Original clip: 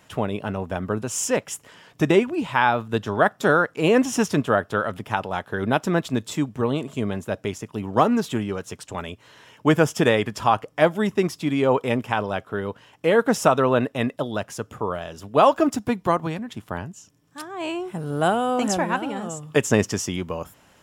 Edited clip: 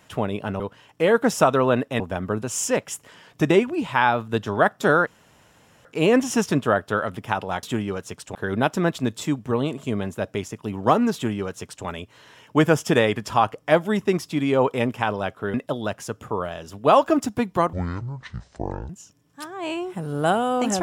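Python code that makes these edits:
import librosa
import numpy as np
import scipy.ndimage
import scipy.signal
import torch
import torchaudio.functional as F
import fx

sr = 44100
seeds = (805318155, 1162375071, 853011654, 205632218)

y = fx.edit(x, sr, fx.insert_room_tone(at_s=3.67, length_s=0.78),
    fx.duplicate(start_s=8.24, length_s=0.72, to_s=5.45),
    fx.move(start_s=12.64, length_s=1.4, to_s=0.6),
    fx.speed_span(start_s=16.23, length_s=0.64, speed=0.55), tone=tone)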